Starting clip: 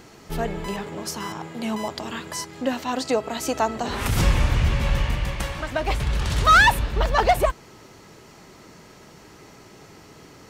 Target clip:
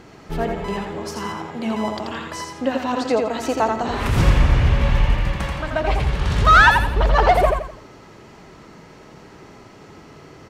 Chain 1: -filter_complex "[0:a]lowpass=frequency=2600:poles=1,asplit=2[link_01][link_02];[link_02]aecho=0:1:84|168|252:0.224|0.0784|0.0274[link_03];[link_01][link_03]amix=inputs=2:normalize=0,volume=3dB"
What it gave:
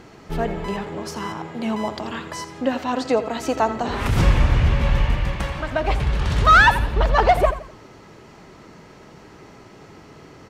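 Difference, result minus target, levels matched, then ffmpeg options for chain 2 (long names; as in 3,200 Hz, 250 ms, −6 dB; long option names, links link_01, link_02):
echo-to-direct −8.5 dB
-filter_complex "[0:a]lowpass=frequency=2600:poles=1,asplit=2[link_01][link_02];[link_02]aecho=0:1:84|168|252|336:0.596|0.208|0.073|0.0255[link_03];[link_01][link_03]amix=inputs=2:normalize=0,volume=3dB"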